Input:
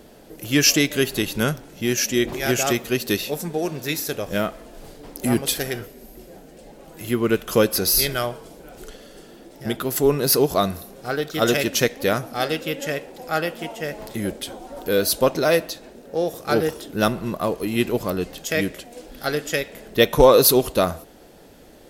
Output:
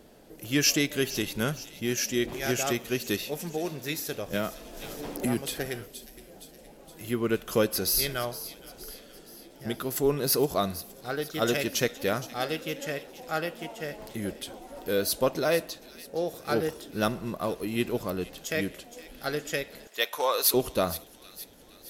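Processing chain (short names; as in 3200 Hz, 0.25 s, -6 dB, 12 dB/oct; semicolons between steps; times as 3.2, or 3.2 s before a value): 19.87–20.54 HPF 850 Hz 12 dB/oct; thin delay 0.467 s, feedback 53%, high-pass 2700 Hz, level -13.5 dB; 4.33–5.66 three-band squash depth 70%; gain -7 dB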